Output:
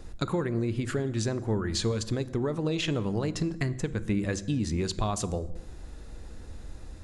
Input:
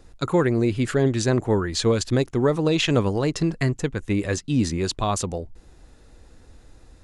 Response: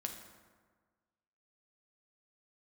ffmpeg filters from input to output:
-filter_complex "[0:a]acompressor=threshold=-31dB:ratio=6,asplit=2[link_01][link_02];[1:a]atrim=start_sample=2205,afade=type=out:start_time=0.34:duration=0.01,atrim=end_sample=15435,lowshelf=frequency=250:gain=10[link_03];[link_02][link_03]afir=irnorm=-1:irlink=0,volume=-5.5dB[link_04];[link_01][link_04]amix=inputs=2:normalize=0"

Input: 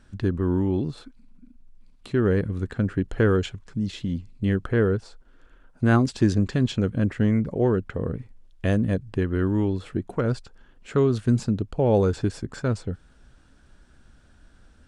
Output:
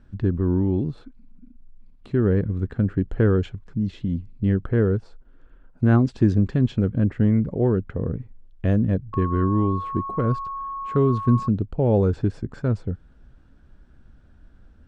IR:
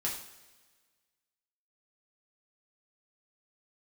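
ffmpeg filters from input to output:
-filter_complex "[0:a]aemphasis=mode=reproduction:type=75fm,asettb=1/sr,asplit=3[link_01][link_02][link_03];[link_01]atrim=end=9.134[link_04];[link_02]atrim=start=9.13:end=11.48,asetpts=PTS-STARTPTS,afade=type=in:duration=0.004:curve=qsin,afade=type=out:start_time=2.346:duration=0.004:curve=qsin,aeval=exprs='val(0)+0.0562*sin(2*PI*1100*n/s)':channel_layout=same[link_05];[link_03]atrim=start=11.476[link_06];[link_04][link_05]acrossfade=duration=0.004:curve1=hsin:curve2=qsin[link_07];[link_07][link_06]acrossfade=duration=0.004:curve1=qsin:curve2=hsin,lowshelf=frequency=370:gain=7,volume=-4dB"

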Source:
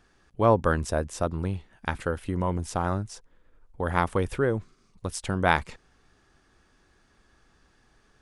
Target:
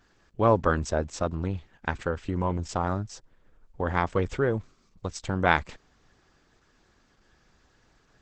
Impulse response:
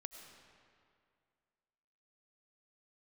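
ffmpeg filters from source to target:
-ar 48000 -c:a libopus -b:a 10k

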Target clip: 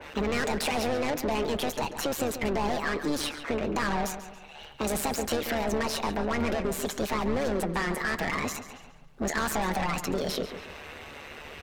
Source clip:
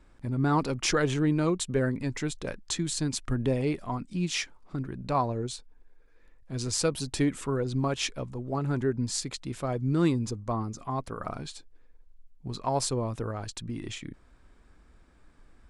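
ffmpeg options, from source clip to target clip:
ffmpeg -i in.wav -filter_complex "[0:a]asplit=2[link_01][link_02];[link_02]highpass=frequency=720:poles=1,volume=34dB,asoftclip=type=tanh:threshold=-12.5dB[link_03];[link_01][link_03]amix=inputs=2:normalize=0,lowpass=frequency=1600:poles=1,volume=-6dB,asetrate=53981,aresample=44100,atempo=0.816958,asplit=2[link_04][link_05];[link_05]asoftclip=type=tanh:threshold=-24dB,volume=-4dB[link_06];[link_04][link_06]amix=inputs=2:normalize=0,tremolo=f=110:d=0.71,flanger=delay=4.6:depth=2.5:regen=-64:speed=0.69:shape=triangular,acrossover=split=120|3000[link_07][link_08][link_09];[link_08]acompressor=threshold=-31dB:ratio=3[link_10];[link_07][link_10][link_09]amix=inputs=3:normalize=0,asplit=2[link_11][link_12];[link_12]adelay=189,lowpass=frequency=3700:poles=1,volume=-10.5dB,asplit=2[link_13][link_14];[link_14]adelay=189,lowpass=frequency=3700:poles=1,volume=0.44,asplit=2[link_15][link_16];[link_16]adelay=189,lowpass=frequency=3700:poles=1,volume=0.44,asplit=2[link_17][link_18];[link_18]adelay=189,lowpass=frequency=3700:poles=1,volume=0.44,asplit=2[link_19][link_20];[link_20]adelay=189,lowpass=frequency=3700:poles=1,volume=0.44[link_21];[link_11][link_13][link_15][link_17][link_19][link_21]amix=inputs=6:normalize=0,asetrate=59535,aresample=44100,adynamicequalizer=threshold=0.00562:dfrequency=2700:dqfactor=0.7:tfrequency=2700:tqfactor=0.7:attack=5:release=100:ratio=0.375:range=2.5:mode=cutabove:tftype=highshelf,volume=2.5dB" out.wav

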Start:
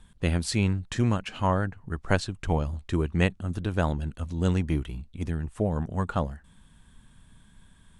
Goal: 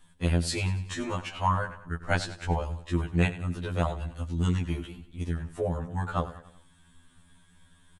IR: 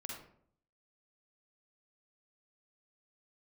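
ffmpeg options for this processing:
-af "lowshelf=frequency=360:gain=-5.5,aecho=1:1:95|190|285|380:0.178|0.0854|0.041|0.0197,afftfilt=real='re*2*eq(mod(b,4),0)':imag='im*2*eq(mod(b,4),0)':win_size=2048:overlap=0.75,volume=2dB"

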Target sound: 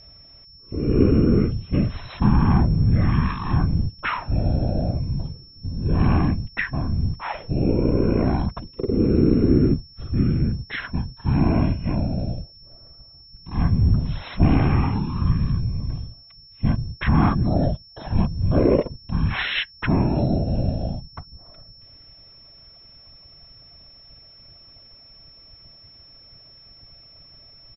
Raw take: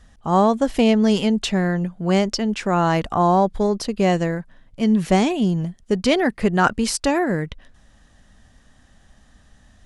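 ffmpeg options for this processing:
ffmpeg -i in.wav -af "asetrate=15656,aresample=44100,afftfilt=real='hypot(re,im)*cos(2*PI*random(0))':imag='hypot(re,im)*sin(2*PI*random(1))':win_size=512:overlap=0.75,aeval=exprs='val(0)+0.00282*sin(2*PI*5400*n/s)':channel_layout=same,volume=5dB" out.wav

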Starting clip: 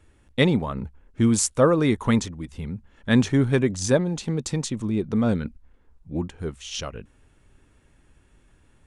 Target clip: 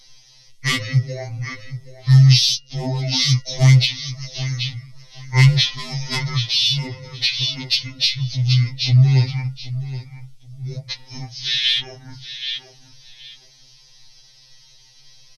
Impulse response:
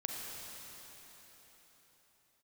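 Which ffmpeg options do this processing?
-filter_complex "[0:a]equalizer=frequency=440:width_type=o:width=0.76:gain=-13,bandreject=frequency=590:width=12,aecho=1:1:447|894:0.2|0.0399,volume=13.5dB,asoftclip=hard,volume=-13.5dB,aexciter=amount=13.3:drive=7.1:freq=3800,acrossover=split=420[link_01][link_02];[link_02]acompressor=threshold=-14dB:ratio=8[link_03];[link_01][link_03]amix=inputs=2:normalize=0,asetrate=25442,aresample=44100,tiltshelf=frequency=810:gain=3.5,bandreject=frequency=176.9:width_type=h:width=4,bandreject=frequency=353.8:width_type=h:width=4,bandreject=frequency=530.7:width_type=h:width=4,bandreject=frequency=707.6:width_type=h:width=4,bandreject=frequency=884.5:width_type=h:width=4,bandreject=frequency=1061.4:width_type=h:width=4,bandreject=frequency=1238.3:width_type=h:width=4,bandreject=frequency=1415.2:width_type=h:width=4,bandreject=frequency=1592.1:width_type=h:width=4,bandreject=frequency=1769:width_type=h:width=4,bandreject=frequency=1945.9:width_type=h:width=4,bandreject=frequency=2122.8:width_type=h:width=4,bandreject=frequency=2299.7:width_type=h:width=4,bandreject=frequency=2476.6:width_type=h:width=4,bandreject=frequency=2653.5:width_type=h:width=4,bandreject=frequency=2830.4:width_type=h:width=4,afftfilt=real='re*2.45*eq(mod(b,6),0)':imag='im*2.45*eq(mod(b,6),0)':win_size=2048:overlap=0.75,volume=3.5dB"

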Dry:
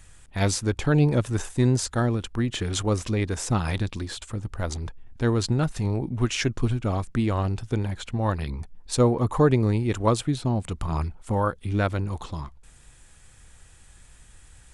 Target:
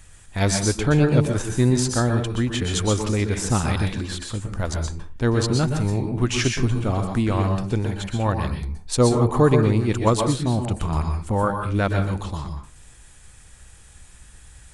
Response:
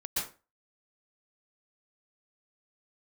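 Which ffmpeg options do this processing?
-filter_complex "[0:a]asplit=2[link_01][link_02];[1:a]atrim=start_sample=2205,highshelf=frequency=6900:gain=6[link_03];[link_02][link_03]afir=irnorm=-1:irlink=0,volume=-6dB[link_04];[link_01][link_04]amix=inputs=2:normalize=0"

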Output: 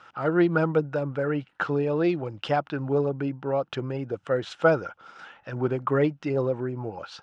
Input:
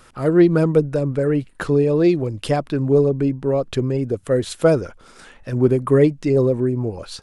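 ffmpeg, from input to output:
ffmpeg -i in.wav -af "highpass=150,equalizer=frequency=240:width_type=q:width=4:gain=-7,equalizer=frequency=400:width_type=q:width=4:gain=-5,equalizer=frequency=830:width_type=q:width=4:gain=9,equalizer=frequency=1400:width_type=q:width=4:gain=10,equalizer=frequency=2900:width_type=q:width=4:gain=5,equalizer=frequency=4400:width_type=q:width=4:gain=-5,lowpass=frequency=5400:width=0.5412,lowpass=frequency=5400:width=1.3066,volume=-5.5dB" out.wav

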